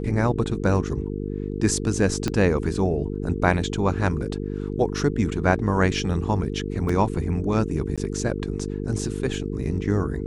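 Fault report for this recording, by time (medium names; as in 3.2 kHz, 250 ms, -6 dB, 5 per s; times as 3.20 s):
buzz 50 Hz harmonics 9 -29 dBFS
2.28 s: pop -11 dBFS
6.89 s: dropout 4.3 ms
7.96–7.98 s: dropout 16 ms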